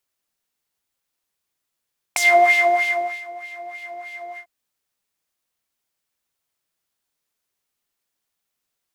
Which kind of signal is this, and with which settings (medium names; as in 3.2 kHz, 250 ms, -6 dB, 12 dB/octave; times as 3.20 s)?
synth patch with filter wobble F5, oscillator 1 triangle, oscillator 2 sine, interval +19 st, oscillator 2 level -3 dB, sub -16 dB, noise -7 dB, filter bandpass, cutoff 420 Hz, Q 2, filter envelope 4 oct, filter decay 0.09 s, attack 2.9 ms, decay 1.05 s, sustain -23 dB, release 0.09 s, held 2.21 s, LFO 3.2 Hz, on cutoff 1.2 oct